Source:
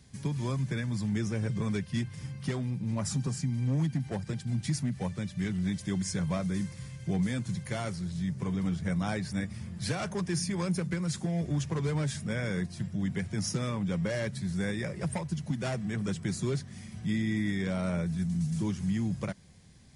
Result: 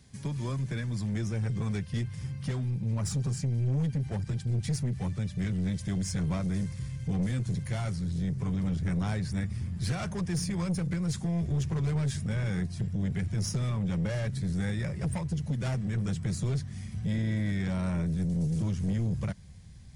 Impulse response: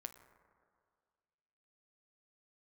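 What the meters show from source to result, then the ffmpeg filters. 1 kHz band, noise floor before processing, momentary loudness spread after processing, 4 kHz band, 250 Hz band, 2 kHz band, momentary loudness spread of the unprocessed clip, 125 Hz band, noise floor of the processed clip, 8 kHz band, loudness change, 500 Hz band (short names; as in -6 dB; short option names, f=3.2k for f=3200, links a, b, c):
-2.5 dB, -47 dBFS, 4 LU, -2.0 dB, -0.5 dB, -3.0 dB, 4 LU, +3.0 dB, -42 dBFS, -1.5 dB, +1.0 dB, -3.5 dB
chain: -af "asubboost=boost=4:cutoff=140,aeval=exprs='(tanh(15.8*val(0)+0.2)-tanh(0.2))/15.8':c=same"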